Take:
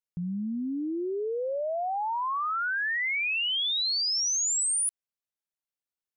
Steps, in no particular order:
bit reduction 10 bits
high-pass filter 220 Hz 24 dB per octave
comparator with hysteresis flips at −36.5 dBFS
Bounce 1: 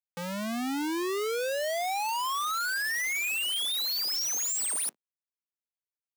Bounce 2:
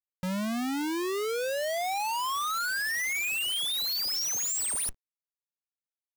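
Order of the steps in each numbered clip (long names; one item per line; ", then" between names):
comparator with hysteresis, then bit reduction, then high-pass filter
high-pass filter, then comparator with hysteresis, then bit reduction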